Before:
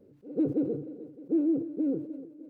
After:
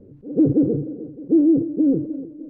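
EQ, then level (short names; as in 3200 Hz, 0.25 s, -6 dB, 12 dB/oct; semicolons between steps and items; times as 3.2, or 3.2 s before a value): tilt -4 dB/oct; +4.0 dB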